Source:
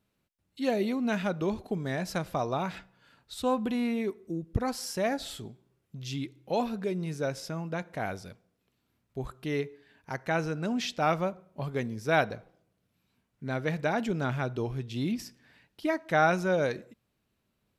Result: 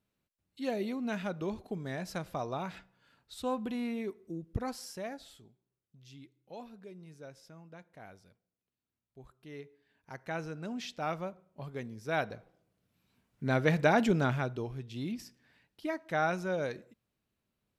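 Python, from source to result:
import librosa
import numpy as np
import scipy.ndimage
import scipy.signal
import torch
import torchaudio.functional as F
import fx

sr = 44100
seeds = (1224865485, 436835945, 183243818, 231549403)

y = fx.gain(x, sr, db=fx.line((4.68, -6.0), (5.49, -17.5), (9.33, -17.5), (10.29, -8.5), (11.98, -8.5), (13.5, 3.5), (14.12, 3.5), (14.69, -6.5)))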